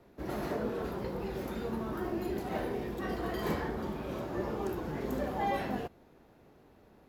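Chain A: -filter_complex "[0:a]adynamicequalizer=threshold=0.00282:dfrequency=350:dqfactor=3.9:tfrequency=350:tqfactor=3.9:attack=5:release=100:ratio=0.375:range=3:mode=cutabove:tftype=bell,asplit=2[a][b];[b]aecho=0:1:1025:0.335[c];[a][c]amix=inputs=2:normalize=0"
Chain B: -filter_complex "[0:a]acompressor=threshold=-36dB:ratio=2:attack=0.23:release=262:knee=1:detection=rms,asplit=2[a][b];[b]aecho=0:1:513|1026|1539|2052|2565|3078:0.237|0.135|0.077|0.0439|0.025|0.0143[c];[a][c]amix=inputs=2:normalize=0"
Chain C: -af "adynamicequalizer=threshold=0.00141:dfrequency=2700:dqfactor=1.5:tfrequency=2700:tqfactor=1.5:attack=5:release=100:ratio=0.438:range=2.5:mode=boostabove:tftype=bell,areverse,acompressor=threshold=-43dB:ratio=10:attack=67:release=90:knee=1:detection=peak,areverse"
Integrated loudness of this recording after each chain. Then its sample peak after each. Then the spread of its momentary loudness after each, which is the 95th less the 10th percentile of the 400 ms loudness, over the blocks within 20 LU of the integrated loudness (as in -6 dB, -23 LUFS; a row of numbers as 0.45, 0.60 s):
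-37.0, -40.5, -42.0 LUFS; -21.0, -27.5, -27.5 dBFS; 9, 11, 19 LU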